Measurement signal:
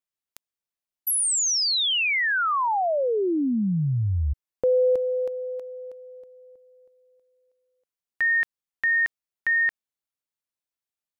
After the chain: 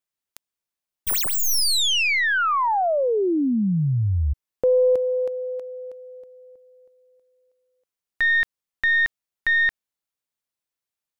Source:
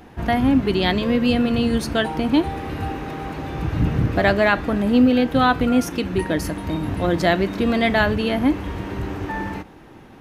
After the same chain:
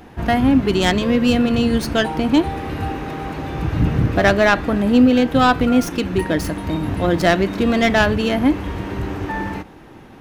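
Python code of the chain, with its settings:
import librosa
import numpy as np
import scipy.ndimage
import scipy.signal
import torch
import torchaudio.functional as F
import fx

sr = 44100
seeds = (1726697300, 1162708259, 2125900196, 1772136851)

y = fx.tracing_dist(x, sr, depth_ms=0.067)
y = y * librosa.db_to_amplitude(2.5)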